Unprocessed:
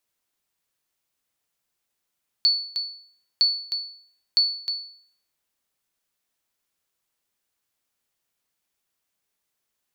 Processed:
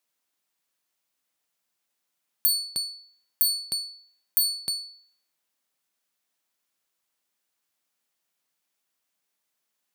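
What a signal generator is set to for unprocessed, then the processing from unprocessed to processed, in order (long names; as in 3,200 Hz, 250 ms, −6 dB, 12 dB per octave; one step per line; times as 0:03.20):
ping with an echo 4,450 Hz, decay 0.57 s, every 0.96 s, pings 3, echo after 0.31 s, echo −8 dB −12 dBFS
stylus tracing distortion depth 0.14 ms
high-pass filter 170 Hz 12 dB per octave
parametric band 410 Hz −3.5 dB 0.44 octaves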